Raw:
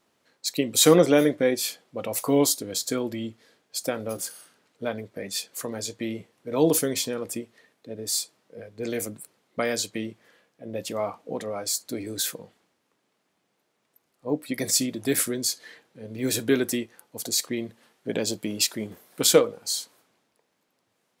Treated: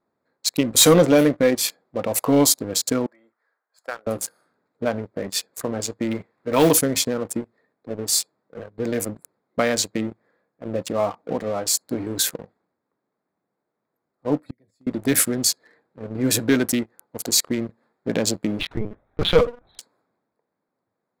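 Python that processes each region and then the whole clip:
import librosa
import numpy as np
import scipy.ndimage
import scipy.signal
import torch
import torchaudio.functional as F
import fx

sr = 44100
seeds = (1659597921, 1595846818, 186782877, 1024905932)

y = fx.chain(x, sr, fx.highpass(hz=1100.0, slope=12),
    fx.high_shelf_res(hz=2200.0, db=-9.0, q=1.5), at=(3.06, 4.07))
y = fx.chain(y, sr, fx.block_float(bits=5),
    fx.peak_eq(hz=2200.0, db=9.5, octaves=2.3), at=(6.11, 6.73))
y = fx.chain(y, sr, fx.low_shelf(hz=120.0, db=11.5),
    fx.gate_flip(shuts_db=-27.0, range_db=-30),
    fx.band_squash(depth_pct=40), at=(14.45, 14.87))
y = fx.chain(y, sr, fx.peak_eq(hz=68.0, db=-2.0, octaves=1.1),
    fx.lpc_vocoder(seeds[0], excitation='pitch_kept', order=10), at=(18.59, 19.79))
y = fx.wiener(y, sr, points=15)
y = fx.dynamic_eq(y, sr, hz=390.0, q=2.8, threshold_db=-37.0, ratio=4.0, max_db=-7)
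y = fx.leveller(y, sr, passes=2)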